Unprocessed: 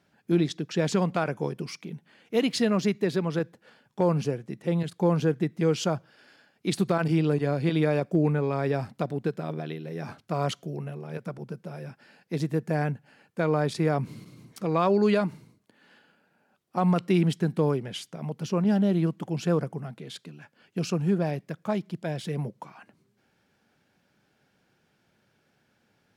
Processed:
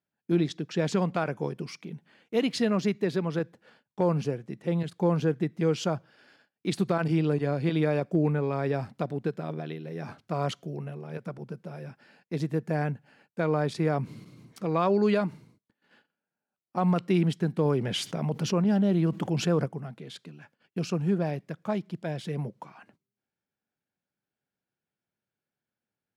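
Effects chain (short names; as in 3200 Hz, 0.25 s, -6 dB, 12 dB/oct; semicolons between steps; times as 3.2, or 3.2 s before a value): high shelf 6800 Hz -6 dB; gate -58 dBFS, range -21 dB; 17.65–19.66 fast leveller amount 50%; gain -1.5 dB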